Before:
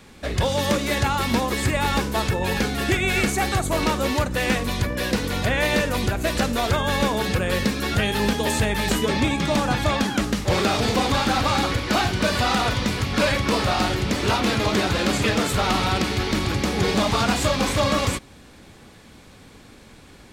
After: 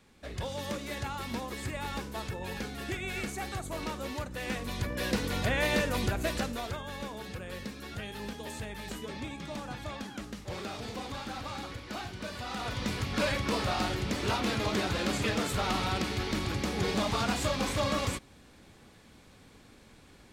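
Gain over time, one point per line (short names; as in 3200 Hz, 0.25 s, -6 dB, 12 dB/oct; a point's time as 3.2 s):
4.38 s -14.5 dB
5.09 s -7 dB
6.21 s -7 dB
6.87 s -18 dB
12.45 s -18 dB
12.89 s -9 dB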